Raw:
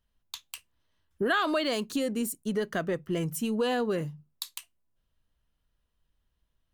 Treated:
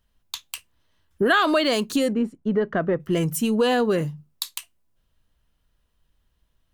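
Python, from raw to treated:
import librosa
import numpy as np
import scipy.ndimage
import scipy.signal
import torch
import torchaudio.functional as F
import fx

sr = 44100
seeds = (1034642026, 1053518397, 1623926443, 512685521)

y = fx.lowpass(x, sr, hz=1600.0, slope=12, at=(2.13, 3.0))
y = F.gain(torch.from_numpy(y), 7.5).numpy()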